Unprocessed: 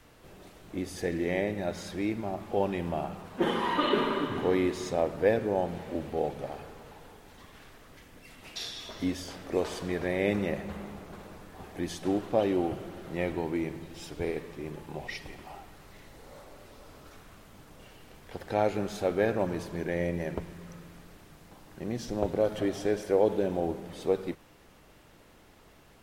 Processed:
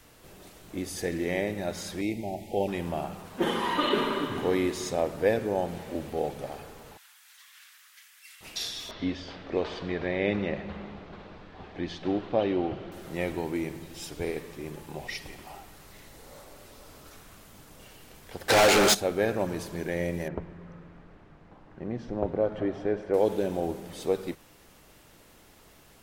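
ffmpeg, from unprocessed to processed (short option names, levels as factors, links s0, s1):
-filter_complex "[0:a]asettb=1/sr,asplit=3[s0][s1][s2];[s0]atrim=end=2.014[s3];[s1]atrim=start=2.01:end=2.68,asetpts=PTS-STARTPTS,afade=t=in:d=0.004:c=qsin,afade=t=out:st=0.666:d=0.004:c=qsin,asuperstop=centerf=1300:order=12:qfactor=1.2[s4];[s2]atrim=start=2.676[s5];[s3][s4]acrossfade=d=0.004:c1=hsin:c2=qsin[s6];[s6][s5]acrossfade=d=0.004:c1=qsin:c2=hsin,asettb=1/sr,asplit=3[s7][s8][s9];[s7]atrim=end=6.974[s10];[s8]atrim=start=6.97:end=8.41,asetpts=PTS-STARTPTS,afade=t=in:d=0.004:c=qsin,afade=t=out:st=1.436:d=0.004:c=qsin,highpass=f=1400:w=0.5412,highpass=f=1400:w=1.3066[s11];[s9]atrim=start=8.406[s12];[s10][s11]acrossfade=d=0.004:c1=hsin:c2=qsin[s13];[s13][s12]acrossfade=d=0.004:c1=qsin:c2=hsin,asettb=1/sr,asplit=3[s14][s15][s16];[s14]atrim=end=8.914[s17];[s15]atrim=start=8.91:end=12.92,asetpts=PTS-STARTPTS,afade=t=in:d=0.004:c=qsin,afade=t=out:st=4.006:d=0.004:c=qsin,lowpass=f=4100:w=0.5412,lowpass=f=4100:w=1.3066[s18];[s16]atrim=start=12.916[s19];[s17][s18]acrossfade=d=0.004:c1=hsin:c2=qsin[s20];[s20][s19]acrossfade=d=0.004:c1=qsin:c2=hsin,asplit=3[s21][s22][s23];[s21]afade=t=out:st=18.48:d=0.02[s24];[s22]asplit=2[s25][s26];[s26]highpass=f=720:p=1,volume=50.1,asoftclip=type=tanh:threshold=0.224[s27];[s25][s27]amix=inputs=2:normalize=0,lowpass=f=6700:p=1,volume=0.501,afade=t=in:st=18.48:d=0.02,afade=t=out:st=18.93:d=0.02[s28];[s23]afade=t=in:st=18.93:d=0.02[s29];[s24][s28][s29]amix=inputs=3:normalize=0,asettb=1/sr,asplit=3[s30][s31][s32];[s30]atrim=end=20.284[s33];[s31]atrim=start=20.28:end=23.14,asetpts=PTS-STARTPTS,afade=t=in:d=0.004:c=qsin,afade=t=out:st=2.856:d=0.004:c=qsin,lowpass=1700[s34];[s32]atrim=start=23.136[s35];[s33][s34]acrossfade=d=0.004:c1=hsin:c2=qsin[s36];[s36][s35]acrossfade=d=0.004:c1=qsin:c2=hsin,highshelf=f=4600:g=9"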